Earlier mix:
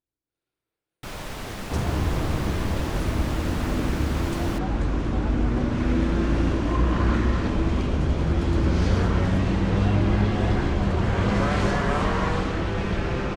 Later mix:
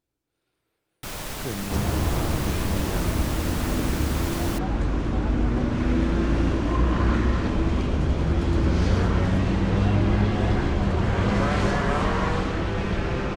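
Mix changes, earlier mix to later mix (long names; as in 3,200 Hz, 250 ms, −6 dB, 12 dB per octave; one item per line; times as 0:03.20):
speech +10.5 dB
first sound: remove low-pass filter 3,700 Hz 6 dB per octave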